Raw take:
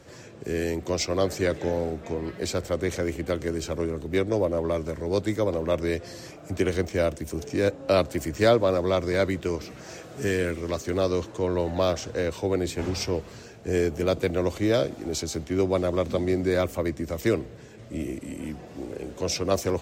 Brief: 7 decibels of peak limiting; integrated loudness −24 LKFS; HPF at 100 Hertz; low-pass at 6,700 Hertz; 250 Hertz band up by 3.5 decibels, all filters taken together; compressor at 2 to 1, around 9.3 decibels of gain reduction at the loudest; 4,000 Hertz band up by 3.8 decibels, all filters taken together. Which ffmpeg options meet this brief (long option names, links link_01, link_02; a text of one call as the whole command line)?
ffmpeg -i in.wav -af "highpass=100,lowpass=6700,equalizer=frequency=250:width_type=o:gain=5,equalizer=frequency=4000:width_type=o:gain=5.5,acompressor=threshold=-32dB:ratio=2,volume=10dB,alimiter=limit=-12.5dB:level=0:latency=1" out.wav